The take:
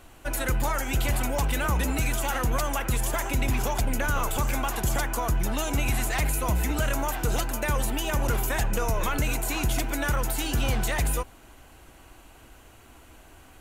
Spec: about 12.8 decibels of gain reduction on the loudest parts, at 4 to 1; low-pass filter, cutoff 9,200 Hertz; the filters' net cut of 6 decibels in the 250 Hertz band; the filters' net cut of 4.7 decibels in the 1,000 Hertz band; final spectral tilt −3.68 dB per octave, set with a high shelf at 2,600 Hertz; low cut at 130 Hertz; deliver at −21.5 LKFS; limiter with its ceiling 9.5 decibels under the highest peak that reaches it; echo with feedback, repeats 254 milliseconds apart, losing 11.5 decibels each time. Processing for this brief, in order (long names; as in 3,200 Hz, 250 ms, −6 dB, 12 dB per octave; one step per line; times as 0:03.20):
high-pass filter 130 Hz
low-pass filter 9,200 Hz
parametric band 250 Hz −7 dB
parametric band 1,000 Hz −5 dB
high-shelf EQ 2,600 Hz −4.5 dB
downward compressor 4 to 1, threshold −44 dBFS
brickwall limiter −39.5 dBFS
repeating echo 254 ms, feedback 27%, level −11.5 dB
level +27 dB